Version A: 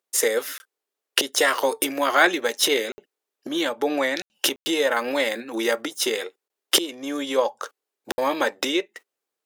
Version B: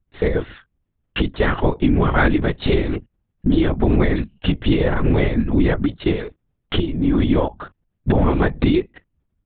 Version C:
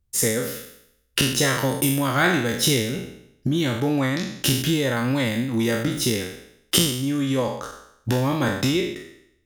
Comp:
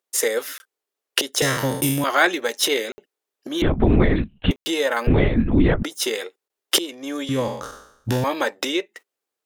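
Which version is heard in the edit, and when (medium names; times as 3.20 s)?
A
1.42–2.04 s: from C
3.62–4.51 s: from B
5.07–5.83 s: from B
7.29–8.24 s: from C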